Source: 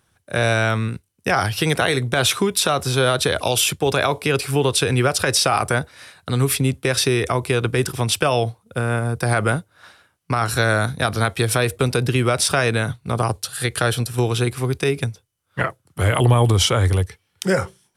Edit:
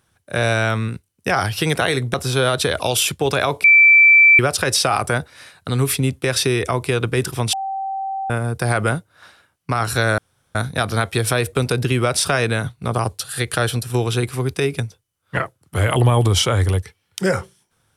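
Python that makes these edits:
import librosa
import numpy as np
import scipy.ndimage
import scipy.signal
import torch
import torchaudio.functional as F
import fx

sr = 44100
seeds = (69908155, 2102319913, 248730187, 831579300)

y = fx.edit(x, sr, fx.cut(start_s=2.14, length_s=0.61),
    fx.bleep(start_s=4.25, length_s=0.75, hz=2330.0, db=-6.5),
    fx.bleep(start_s=8.14, length_s=0.77, hz=776.0, db=-22.0),
    fx.insert_room_tone(at_s=10.79, length_s=0.37), tone=tone)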